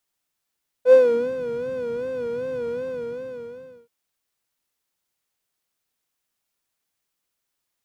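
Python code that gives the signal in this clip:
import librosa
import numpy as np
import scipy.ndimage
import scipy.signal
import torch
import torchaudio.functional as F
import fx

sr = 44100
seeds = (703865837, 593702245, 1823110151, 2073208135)

y = fx.sub_patch_vibrato(sr, seeds[0], note=71, wave='square', wave2='saw', interval_st=12, detune_cents=16, level2_db=-10.5, sub_db=-22.0, noise_db=-8, kind='bandpass', cutoff_hz=140.0, q=2.0, env_oct=2.0, env_decay_s=0.51, env_sustain_pct=0, attack_ms=76.0, decay_s=0.12, sustain_db=-3.5, release_s=1.15, note_s=1.88, lfo_hz=2.6, vibrato_cents=93)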